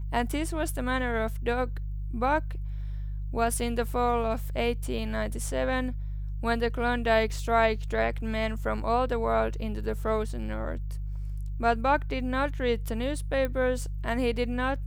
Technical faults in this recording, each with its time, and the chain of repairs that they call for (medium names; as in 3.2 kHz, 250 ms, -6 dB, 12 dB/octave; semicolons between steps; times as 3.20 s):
hum 50 Hz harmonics 3 -33 dBFS
13.45 s: pop -18 dBFS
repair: de-click; de-hum 50 Hz, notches 3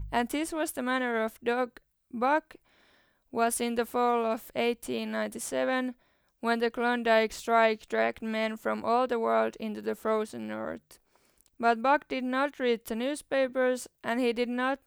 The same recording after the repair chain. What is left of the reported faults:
nothing left